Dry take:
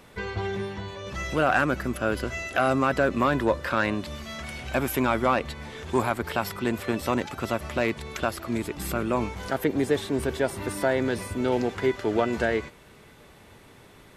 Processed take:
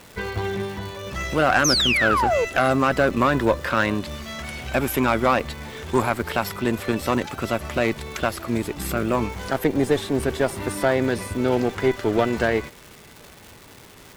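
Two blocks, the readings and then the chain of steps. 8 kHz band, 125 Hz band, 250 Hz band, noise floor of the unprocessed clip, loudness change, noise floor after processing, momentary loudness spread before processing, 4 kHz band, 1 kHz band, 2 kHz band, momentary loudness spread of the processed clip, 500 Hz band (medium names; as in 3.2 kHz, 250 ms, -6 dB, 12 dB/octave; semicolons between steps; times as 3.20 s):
+8.5 dB, +4.5 dB, +3.5 dB, -52 dBFS, +4.5 dB, -46 dBFS, 10 LU, +10.0 dB, +4.5 dB, +5.0 dB, 11 LU, +4.0 dB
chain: painted sound fall, 1.64–2.45 s, 430–6600 Hz -24 dBFS; Chebyshev shaper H 6 -23 dB, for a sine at -9 dBFS; crackle 560 per s -38 dBFS; trim +3.5 dB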